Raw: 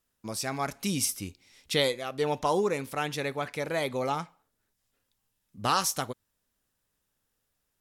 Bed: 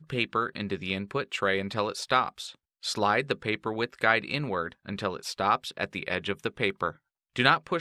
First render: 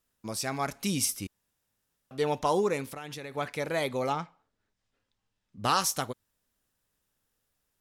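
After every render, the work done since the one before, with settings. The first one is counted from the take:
0:01.27–0:02.11: fill with room tone
0:02.86–0:03.37: downward compressor 8 to 1, threshold −36 dBFS
0:04.13–0:05.64: high-frequency loss of the air 95 metres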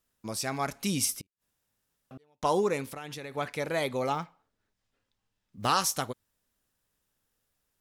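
0:01.21–0:02.43: gate with flip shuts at −37 dBFS, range −38 dB
0:04.12–0:05.69: one scale factor per block 7 bits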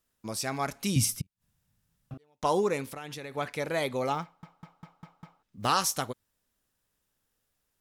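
0:00.96–0:02.14: low shelf with overshoot 230 Hz +11.5 dB, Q 1.5
0:04.23: stutter in place 0.20 s, 6 plays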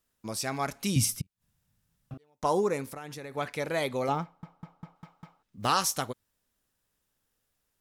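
0:02.30–0:03.37: parametric band 3,100 Hz −7 dB 0.87 octaves
0:04.08–0:04.96: tilt shelving filter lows +4.5 dB, about 1,100 Hz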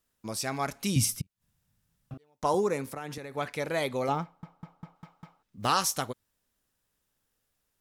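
0:02.54–0:03.18: multiband upward and downward compressor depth 40%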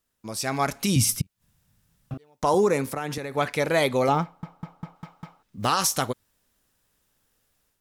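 brickwall limiter −19.5 dBFS, peak gain reduction 8 dB
automatic gain control gain up to 8 dB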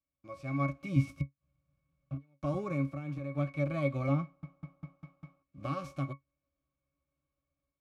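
spectral envelope flattened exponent 0.6
resonances in every octave C#, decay 0.12 s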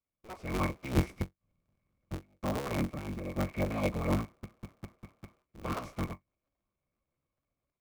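sub-harmonics by changed cycles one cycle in 3, inverted
floating-point word with a short mantissa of 4 bits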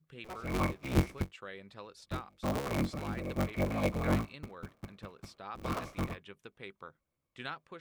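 mix in bed −19.5 dB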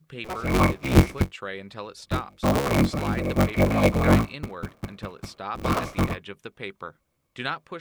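level +11.5 dB

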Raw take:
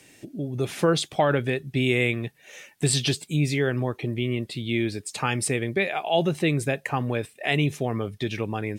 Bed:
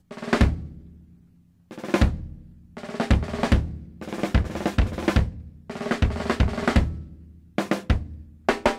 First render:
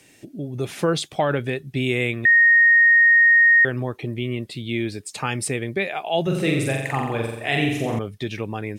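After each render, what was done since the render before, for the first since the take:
0:02.25–0:03.65: beep over 1,860 Hz −10.5 dBFS
0:06.22–0:07.99: flutter between parallel walls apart 7.5 metres, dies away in 0.91 s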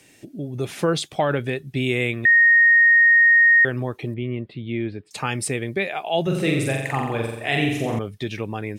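0:04.14–0:05.11: high-frequency loss of the air 440 metres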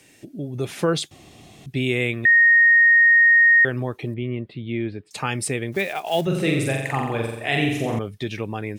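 0:01.11–0:01.66: fill with room tone
0:05.72–0:06.27: one scale factor per block 5 bits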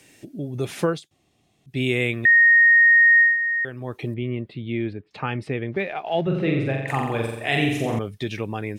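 0:00.85–0:01.81: duck −19 dB, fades 0.16 s
0:03.20–0:03.97: duck −9.5 dB, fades 0.17 s
0:04.93–0:06.88: high-frequency loss of the air 330 metres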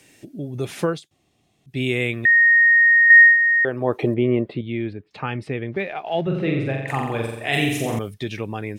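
0:03.10–0:04.61: parametric band 600 Hz +14 dB 2.9 octaves
0:07.53–0:08.14: high-shelf EQ 5,900 Hz +12 dB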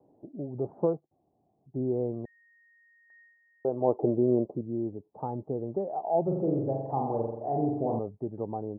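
Butterworth low-pass 880 Hz 48 dB per octave
spectral tilt +3 dB per octave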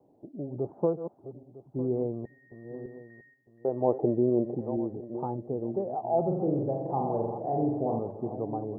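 feedback delay that plays each chunk backwards 477 ms, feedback 50%, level −11 dB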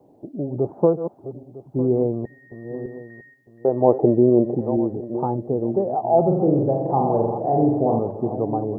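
level +9.5 dB

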